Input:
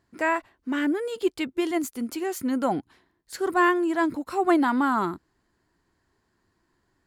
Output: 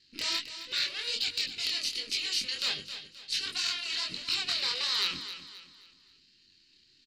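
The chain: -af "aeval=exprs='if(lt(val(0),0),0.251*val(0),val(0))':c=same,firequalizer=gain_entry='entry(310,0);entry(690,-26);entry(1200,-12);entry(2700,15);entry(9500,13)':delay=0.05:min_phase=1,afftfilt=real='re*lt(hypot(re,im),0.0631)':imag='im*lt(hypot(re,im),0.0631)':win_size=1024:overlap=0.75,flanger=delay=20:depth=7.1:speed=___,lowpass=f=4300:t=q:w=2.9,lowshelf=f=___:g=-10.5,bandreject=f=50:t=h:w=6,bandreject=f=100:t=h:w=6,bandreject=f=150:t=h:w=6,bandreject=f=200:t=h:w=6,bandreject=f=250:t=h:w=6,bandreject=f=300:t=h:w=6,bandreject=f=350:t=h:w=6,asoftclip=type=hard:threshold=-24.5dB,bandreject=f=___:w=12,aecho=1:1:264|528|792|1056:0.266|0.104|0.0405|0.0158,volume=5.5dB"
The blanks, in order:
1.4, 69, 3400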